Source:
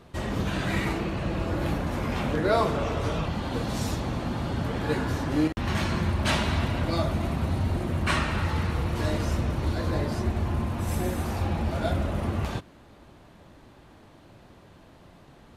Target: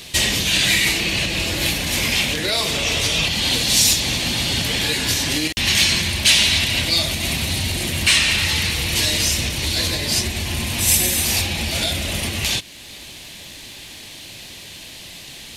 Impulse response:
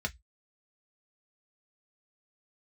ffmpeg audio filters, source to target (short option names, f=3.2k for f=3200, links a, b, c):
-af "alimiter=limit=-23dB:level=0:latency=1:release=374,aexciter=amount=10.2:drive=5.9:freq=2k,acontrast=49"